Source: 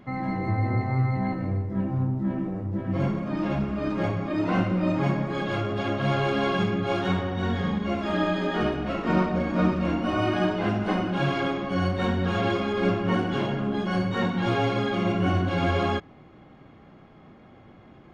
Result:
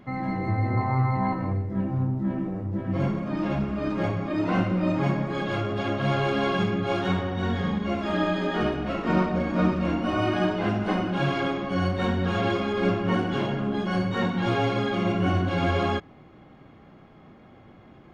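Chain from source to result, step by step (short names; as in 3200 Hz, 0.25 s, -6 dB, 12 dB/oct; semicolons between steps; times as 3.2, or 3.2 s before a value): 0.77–1.53 bell 1000 Hz +11.5 dB 0.61 oct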